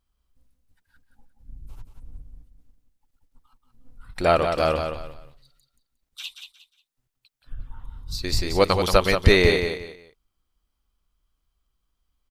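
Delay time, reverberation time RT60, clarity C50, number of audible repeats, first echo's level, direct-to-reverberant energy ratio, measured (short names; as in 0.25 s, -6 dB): 0.179 s, none, none, 3, -7.0 dB, none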